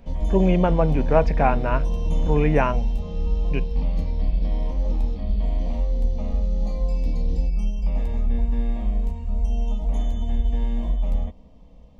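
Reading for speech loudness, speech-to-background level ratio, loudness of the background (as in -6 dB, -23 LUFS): -23.0 LUFS, 3.5 dB, -26.5 LUFS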